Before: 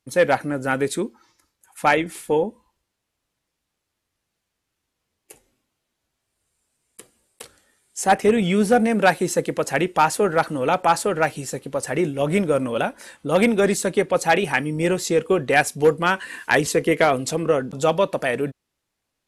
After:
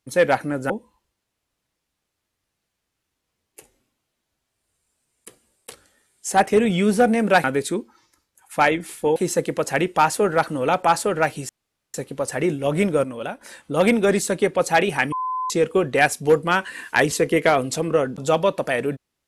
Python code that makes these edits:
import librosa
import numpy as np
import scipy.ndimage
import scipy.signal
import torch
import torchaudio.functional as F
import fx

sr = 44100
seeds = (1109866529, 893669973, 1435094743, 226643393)

y = fx.edit(x, sr, fx.move(start_s=0.7, length_s=1.72, to_s=9.16),
    fx.insert_room_tone(at_s=11.49, length_s=0.45),
    fx.clip_gain(start_s=12.59, length_s=0.37, db=-7.0),
    fx.bleep(start_s=14.67, length_s=0.38, hz=1020.0, db=-22.5), tone=tone)